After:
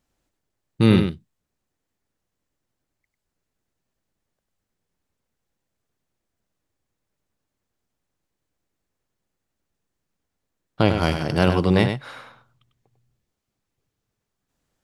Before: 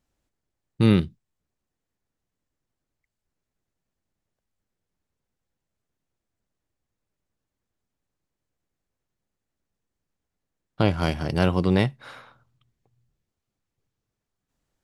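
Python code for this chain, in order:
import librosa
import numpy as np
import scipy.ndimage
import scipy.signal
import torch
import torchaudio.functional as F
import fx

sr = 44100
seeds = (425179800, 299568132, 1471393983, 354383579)

y = fx.low_shelf(x, sr, hz=150.0, db=-3.5)
y = y + 10.0 ** (-7.5 / 20.0) * np.pad(y, (int(98 * sr / 1000.0), 0))[:len(y)]
y = y * 10.0 ** (3.5 / 20.0)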